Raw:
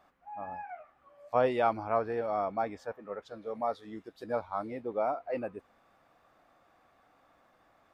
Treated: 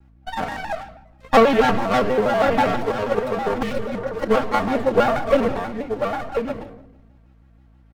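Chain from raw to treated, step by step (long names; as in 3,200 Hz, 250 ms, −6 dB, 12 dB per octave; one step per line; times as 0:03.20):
lower of the sound and its delayed copy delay 4 ms
leveller curve on the samples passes 3
single-tap delay 1,046 ms −6.5 dB
convolution reverb RT60 0.95 s, pre-delay 4 ms, DRR 4 dB
mains hum 60 Hz, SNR 29 dB
healed spectral selection 0:03.65–0:04.13, 250–1,900 Hz after
transient designer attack +9 dB, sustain +5 dB
pitch modulation by a square or saw wave square 6.2 Hz, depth 160 cents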